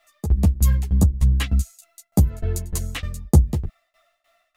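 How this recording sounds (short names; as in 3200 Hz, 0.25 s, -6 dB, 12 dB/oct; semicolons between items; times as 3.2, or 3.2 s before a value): a quantiser's noise floor 12-bit, dither none; tremolo saw down 3.3 Hz, depth 95%; a shimmering, thickened sound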